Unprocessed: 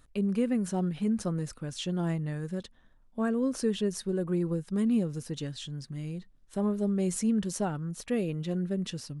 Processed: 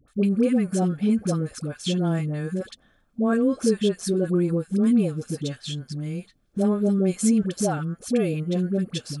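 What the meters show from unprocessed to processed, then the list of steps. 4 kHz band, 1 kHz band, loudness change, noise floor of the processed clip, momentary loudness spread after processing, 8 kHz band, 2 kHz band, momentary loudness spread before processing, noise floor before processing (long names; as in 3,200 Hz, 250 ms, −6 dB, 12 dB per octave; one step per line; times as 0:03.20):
+6.5 dB, +6.0 dB, +7.0 dB, −63 dBFS, 11 LU, +6.5 dB, +6.5 dB, 10 LU, −60 dBFS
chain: notch comb filter 950 Hz
all-pass dispersion highs, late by 81 ms, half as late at 710 Hz
level +7.5 dB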